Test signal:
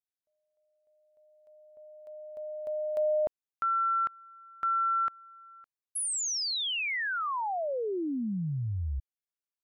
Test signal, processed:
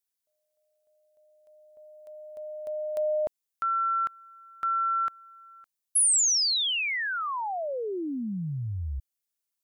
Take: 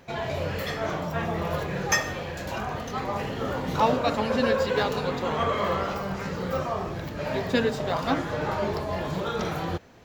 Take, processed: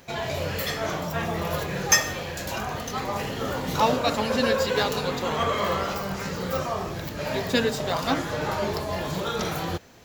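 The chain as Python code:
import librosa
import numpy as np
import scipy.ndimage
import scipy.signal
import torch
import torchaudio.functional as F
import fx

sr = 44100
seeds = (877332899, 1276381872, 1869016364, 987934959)

y = fx.high_shelf(x, sr, hz=4200.0, db=12.0)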